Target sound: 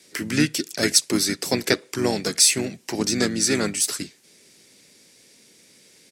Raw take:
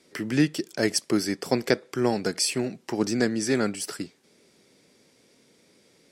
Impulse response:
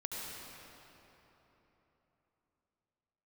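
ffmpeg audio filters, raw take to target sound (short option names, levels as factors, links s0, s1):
-filter_complex "[0:a]acrossover=split=900[s0][s1];[s1]aexciter=amount=1.7:drive=7.7:freq=2000[s2];[s0][s2]amix=inputs=2:normalize=0,asplit=2[s3][s4];[s4]asetrate=35002,aresample=44100,atempo=1.25992,volume=0.447[s5];[s3][s5]amix=inputs=2:normalize=0"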